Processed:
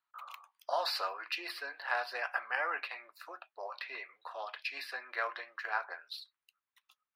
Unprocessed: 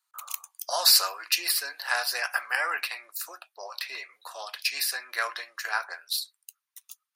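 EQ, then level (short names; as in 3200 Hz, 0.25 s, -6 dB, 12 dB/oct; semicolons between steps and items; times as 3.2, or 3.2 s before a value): dynamic EQ 1700 Hz, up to -4 dB, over -35 dBFS, Q 0.97; air absorption 420 m; 0.0 dB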